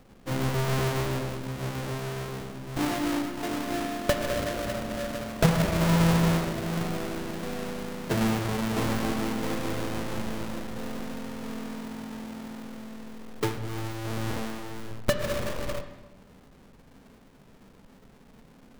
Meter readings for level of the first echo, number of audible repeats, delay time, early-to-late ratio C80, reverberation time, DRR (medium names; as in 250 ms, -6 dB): no echo, no echo, no echo, 11.0 dB, 1.1 s, 6.5 dB